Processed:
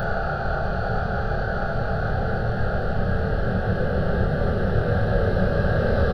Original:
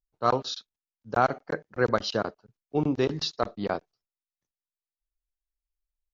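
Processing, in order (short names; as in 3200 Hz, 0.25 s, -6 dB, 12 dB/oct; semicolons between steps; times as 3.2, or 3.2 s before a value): wind noise 280 Hz -26 dBFS; Doppler pass-by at 1.73, 24 m/s, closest 15 m; Paulstretch 16×, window 1.00 s, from 1.24; high shelf 3900 Hz +5.5 dB; fixed phaser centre 1500 Hz, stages 8; doubler 27 ms -4 dB; gain +1.5 dB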